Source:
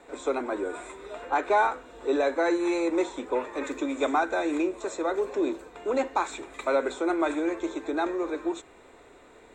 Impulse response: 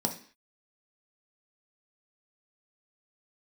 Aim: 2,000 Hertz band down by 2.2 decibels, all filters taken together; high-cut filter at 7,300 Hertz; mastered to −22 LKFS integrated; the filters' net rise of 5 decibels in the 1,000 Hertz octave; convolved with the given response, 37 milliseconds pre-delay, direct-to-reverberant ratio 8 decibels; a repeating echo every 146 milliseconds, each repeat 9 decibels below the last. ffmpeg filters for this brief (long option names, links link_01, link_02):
-filter_complex "[0:a]lowpass=7300,equalizer=frequency=1000:width_type=o:gain=8,equalizer=frequency=2000:width_type=o:gain=-8,aecho=1:1:146|292|438|584:0.355|0.124|0.0435|0.0152,asplit=2[link_01][link_02];[1:a]atrim=start_sample=2205,adelay=37[link_03];[link_02][link_03]afir=irnorm=-1:irlink=0,volume=-14dB[link_04];[link_01][link_04]amix=inputs=2:normalize=0,volume=2dB"